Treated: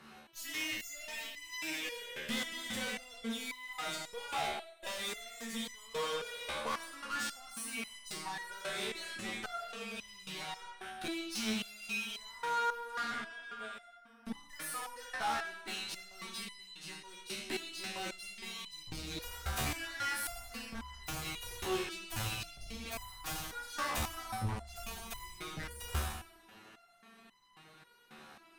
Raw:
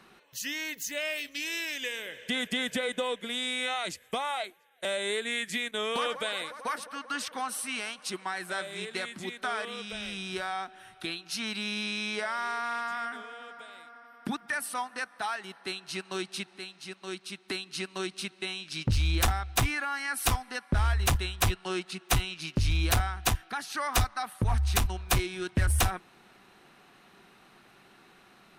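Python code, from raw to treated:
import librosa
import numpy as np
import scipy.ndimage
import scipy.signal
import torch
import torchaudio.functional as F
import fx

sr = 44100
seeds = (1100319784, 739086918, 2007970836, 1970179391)

y = fx.rev_schroeder(x, sr, rt60_s=0.79, comb_ms=28, drr_db=2.0)
y = fx.tube_stage(y, sr, drive_db=36.0, bias=0.55)
y = fx.resonator_held(y, sr, hz=3.7, low_hz=75.0, high_hz=1000.0)
y = F.gain(torch.from_numpy(y), 11.5).numpy()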